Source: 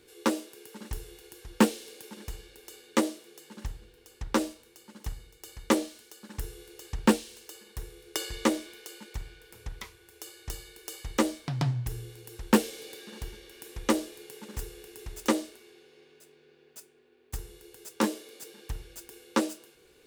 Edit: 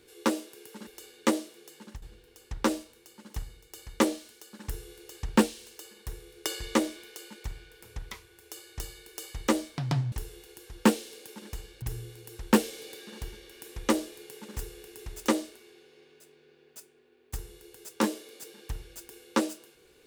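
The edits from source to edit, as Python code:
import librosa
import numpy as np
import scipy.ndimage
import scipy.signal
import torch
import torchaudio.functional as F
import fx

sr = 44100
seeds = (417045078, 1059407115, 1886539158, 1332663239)

y = fx.edit(x, sr, fx.move(start_s=0.87, length_s=1.7, to_s=11.82),
    fx.fade_out_to(start_s=3.44, length_s=0.28, curve='qsin', floor_db=-16.0), tone=tone)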